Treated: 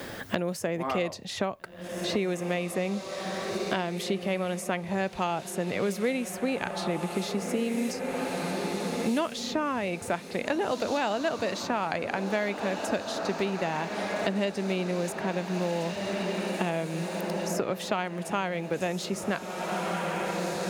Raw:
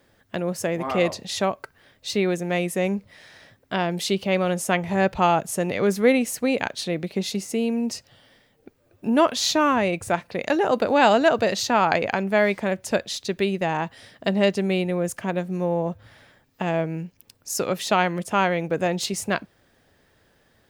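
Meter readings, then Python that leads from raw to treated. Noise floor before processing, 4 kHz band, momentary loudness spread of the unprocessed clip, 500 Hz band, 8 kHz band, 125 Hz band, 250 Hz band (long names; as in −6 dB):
−63 dBFS, −6.0 dB, 10 LU, −6.0 dB, −7.0 dB, −5.0 dB, −5.5 dB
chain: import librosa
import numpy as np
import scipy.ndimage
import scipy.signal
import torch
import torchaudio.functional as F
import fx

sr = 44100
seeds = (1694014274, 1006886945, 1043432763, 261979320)

y = fx.echo_diffused(x, sr, ms=1703, feedback_pct=54, wet_db=-11.0)
y = fx.band_squash(y, sr, depth_pct=100)
y = y * 10.0 ** (-7.5 / 20.0)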